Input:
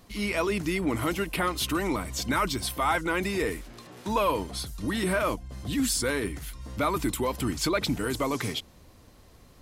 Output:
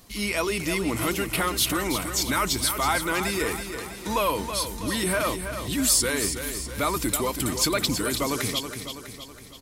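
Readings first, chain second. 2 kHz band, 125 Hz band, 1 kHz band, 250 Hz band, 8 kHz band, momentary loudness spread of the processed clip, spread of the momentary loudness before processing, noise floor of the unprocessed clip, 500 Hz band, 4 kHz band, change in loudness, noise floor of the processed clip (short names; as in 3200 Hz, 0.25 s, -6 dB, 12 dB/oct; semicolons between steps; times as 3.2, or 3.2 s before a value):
+3.0 dB, +1.0 dB, +1.5 dB, +0.5 dB, +9.0 dB, 9 LU, 8 LU, -54 dBFS, +1.0 dB, +6.0 dB, +3.0 dB, -43 dBFS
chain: high shelf 3700 Hz +10 dB; feedback echo 0.325 s, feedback 52%, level -8.5 dB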